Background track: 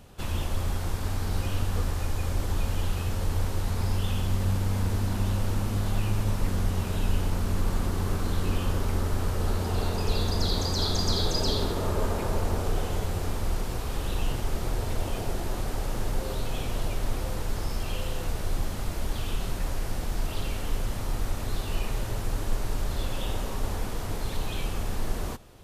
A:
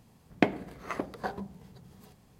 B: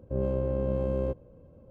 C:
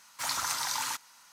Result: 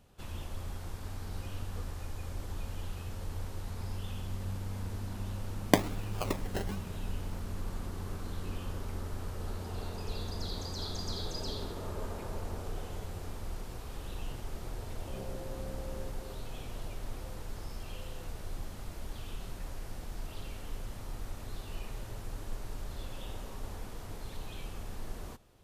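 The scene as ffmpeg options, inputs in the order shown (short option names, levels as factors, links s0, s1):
-filter_complex "[0:a]volume=0.266[s0];[1:a]acrusher=samples=29:mix=1:aa=0.000001:lfo=1:lforange=17.4:lforate=0.99,atrim=end=2.39,asetpts=PTS-STARTPTS,volume=0.891,afade=t=in:d=0.004:c=hsin,afade=t=out:st=2.386:d=0.004:c=hsin,adelay=5310[s1];[2:a]atrim=end=1.7,asetpts=PTS-STARTPTS,volume=0.168,afade=t=in:d=0.004:c=hsin,afade=t=out:st=1.696:d=0.004:c=hsin,adelay=14980[s2];[s0][s1][s2]amix=inputs=3:normalize=0"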